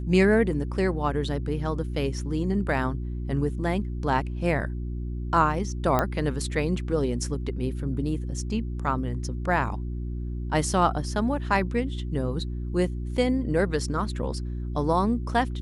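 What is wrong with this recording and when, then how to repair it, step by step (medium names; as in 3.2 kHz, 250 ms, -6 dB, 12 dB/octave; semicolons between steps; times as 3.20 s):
hum 60 Hz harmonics 6 -31 dBFS
5.99 s: pop -10 dBFS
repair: de-click; de-hum 60 Hz, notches 6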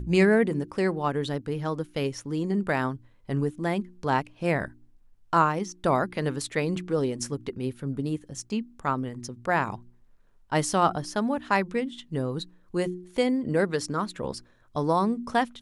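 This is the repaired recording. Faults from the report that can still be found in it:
5.99 s: pop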